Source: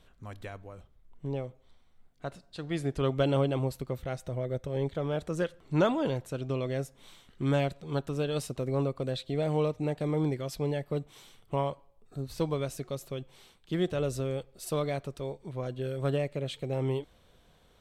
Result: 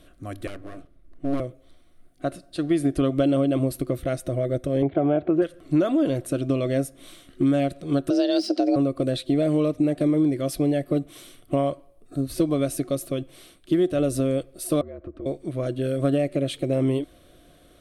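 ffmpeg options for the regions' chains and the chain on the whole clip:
ffmpeg -i in.wav -filter_complex "[0:a]asettb=1/sr,asplit=3[link_01][link_02][link_03];[link_01]atrim=end=0.474[link_04];[link_02]atrim=start=0.47:end=1.4,asetpts=PTS-STARTPTS,afade=type=in:duration=0.004:curve=qsin,afade=type=out:start_time=0.926:duration=0.004:curve=qsin,aemphasis=mode=reproduction:type=cd,bandreject=frequency=3200:width=21,aeval=exprs='abs(val(0))':channel_layout=same[link_05];[link_03]atrim=start=1.396[link_06];[link_04][link_05]acrossfade=duration=0.004:curve1=hsin:curve2=qsin[link_07];[link_07][link_06]acrossfade=duration=0.004:curve1=qsin:curve2=hsin,asettb=1/sr,asplit=3[link_08][link_09][link_10];[link_08]atrim=end=4.824[link_11];[link_09]atrim=start=4.82:end=5.42,asetpts=PTS-STARTPTS,afade=type=in:duration=0.004:curve=qsin,afade=type=out:start_time=0.596:duration=0.004:curve=qsin,acontrast=88,highpass=130,equalizer=frequency=170:width_type=q:width=4:gain=-8,equalizer=frequency=260:width_type=q:width=4:gain=-7,equalizer=frequency=520:width_type=q:width=4:gain=-9,equalizer=frequency=790:width_type=q:width=4:gain=7,equalizer=frequency=1200:width_type=q:width=4:gain=-8,equalizer=frequency=1800:width_type=q:width=4:gain=-10,lowpass=frequency=2200:width=0.5412,lowpass=frequency=2200:width=1.3066[link_12];[link_10]atrim=start=5.416[link_13];[link_11][link_12]acrossfade=duration=0.004:curve1=hsin:curve2=qsin[link_14];[link_14][link_13]acrossfade=duration=0.004:curve1=qsin:curve2=hsin,asettb=1/sr,asplit=3[link_15][link_16][link_17];[link_15]atrim=end=8.104[link_18];[link_16]atrim=start=8.1:end=8.76,asetpts=PTS-STARTPTS,afade=type=in:duration=0.004:curve=qsin,afade=type=out:start_time=0.656:duration=0.004:curve=qsin,bandreject=frequency=990:width=5.4,afreqshift=180,lowpass=frequency=5000:width_type=q:width=13[link_19];[link_17]atrim=start=8.756[link_20];[link_18][link_19]acrossfade=duration=0.004:curve1=hsin:curve2=qsin[link_21];[link_21][link_20]acrossfade=duration=0.004:curve1=qsin:curve2=hsin,asettb=1/sr,asplit=3[link_22][link_23][link_24];[link_22]atrim=end=14.814[link_25];[link_23]atrim=start=14.81:end=15.26,asetpts=PTS-STARTPTS,afade=type=in:duration=0.004:curve=qsin,afade=type=out:start_time=0.446:duration=0.004:curve=qsin,lowpass=1300,afreqshift=-59,acompressor=threshold=-42dB:ratio=16:attack=3.2:release=140:knee=1:detection=peak[link_26];[link_24]atrim=start=15.256[link_27];[link_25][link_26]acrossfade=duration=0.004:curve1=hsin:curve2=qsin[link_28];[link_28][link_27]acrossfade=duration=0.004:curve1=qsin:curve2=hsin,deesser=0.85,superequalizer=6b=3.55:8b=1.78:9b=0.316:16b=2.82,acompressor=threshold=-24dB:ratio=6,volume=6.5dB" out.wav

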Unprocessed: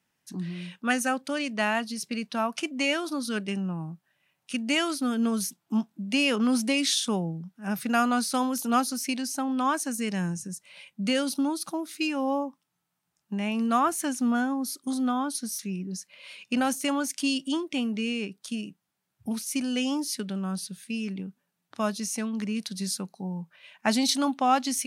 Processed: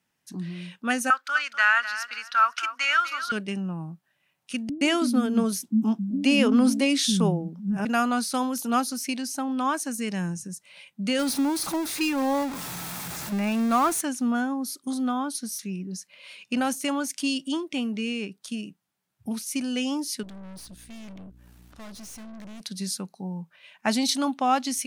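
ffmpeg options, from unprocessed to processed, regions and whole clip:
ffmpeg -i in.wav -filter_complex "[0:a]asettb=1/sr,asplit=3[link_01][link_02][link_03];[link_01]atrim=end=1.104[link_04];[link_02]atrim=start=1.1:end=3.32,asetpts=PTS-STARTPTS,afade=type=in:duration=0.004:curve=qsin,afade=type=out:start_time=2.216:duration=0.004:curve=qsin,highpass=frequency=1400:width_type=q:width=8.1,equalizer=frequency=9700:width=2.3:gain=-10,aecho=1:1:249|498|747:0.251|0.0603|0.0145,atrim=end_sample=97902[link_05];[link_03]atrim=start=3.316[link_06];[link_04][link_05]acrossfade=duration=0.004:curve1=hsin:curve2=qsin[link_07];[link_07][link_06]acrossfade=duration=0.004:curve1=qsin:curve2=hsin,asettb=1/sr,asplit=3[link_08][link_09][link_10];[link_08]atrim=end=4.694[link_11];[link_09]atrim=start=4.69:end=7.85,asetpts=PTS-STARTPTS,afade=type=in:duration=0.004:curve=qsin,afade=type=out:start_time=3.156:duration=0.004:curve=qsin,lowshelf=frequency=450:gain=10.5,acrossover=split=230[link_12][link_13];[link_13]adelay=120[link_14];[link_12][link_14]amix=inputs=2:normalize=0,atrim=end_sample=139356[link_15];[link_10]atrim=start=7.846[link_16];[link_11][link_15]acrossfade=duration=0.004:curve1=hsin:curve2=qsin[link_17];[link_17][link_16]acrossfade=duration=0.004:curve1=qsin:curve2=hsin,asettb=1/sr,asplit=3[link_18][link_19][link_20];[link_18]atrim=end=11.194[link_21];[link_19]atrim=start=11.19:end=14.01,asetpts=PTS-STARTPTS,afade=type=in:duration=0.004:curve=qsin,afade=type=out:start_time=2.816:duration=0.004:curve=qsin,aeval=exprs='val(0)+0.5*0.0376*sgn(val(0))':channel_layout=same,bandreject=frequency=3000:width=14[link_22];[link_20]atrim=start=14.006[link_23];[link_21][link_22]acrossfade=duration=0.004:curve1=hsin:curve2=qsin[link_24];[link_24][link_23]acrossfade=duration=0.004:curve1=qsin:curve2=hsin,asettb=1/sr,asplit=3[link_25][link_26][link_27];[link_25]atrim=end=20.234[link_28];[link_26]atrim=start=20.23:end=22.61,asetpts=PTS-STARTPTS,afade=type=in:duration=0.004:curve=qsin,afade=type=out:start_time=2.376:duration=0.004:curve=qsin,acompressor=mode=upward:threshold=-39dB:ratio=2.5:attack=3.2:release=140:knee=2.83:detection=peak,aeval=exprs='val(0)+0.00355*(sin(2*PI*60*n/s)+sin(2*PI*2*60*n/s)/2+sin(2*PI*3*60*n/s)/3+sin(2*PI*4*60*n/s)/4+sin(2*PI*5*60*n/s)/5)':channel_layout=same,aeval=exprs='(tanh(112*val(0)+0.5)-tanh(0.5))/112':channel_layout=same[link_29];[link_27]atrim=start=22.606[link_30];[link_28][link_29]acrossfade=duration=0.004:curve1=hsin:curve2=qsin[link_31];[link_31][link_30]acrossfade=duration=0.004:curve1=qsin:curve2=hsin" out.wav

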